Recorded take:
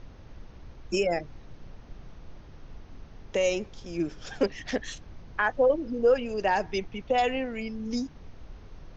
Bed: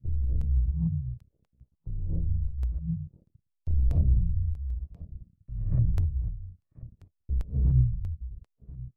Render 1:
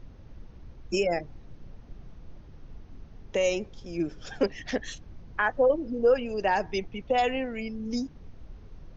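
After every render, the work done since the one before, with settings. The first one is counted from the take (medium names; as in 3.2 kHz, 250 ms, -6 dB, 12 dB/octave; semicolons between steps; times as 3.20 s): noise reduction 6 dB, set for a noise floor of -49 dBFS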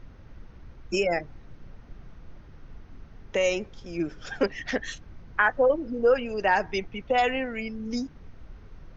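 peaking EQ 1.6 kHz +7.5 dB 1.2 oct; band-stop 1.7 kHz, Q 26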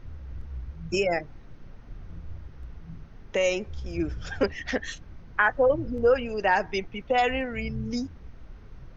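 add bed -13 dB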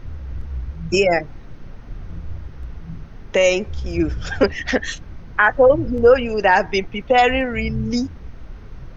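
trim +9 dB; peak limiter -3 dBFS, peak gain reduction 3 dB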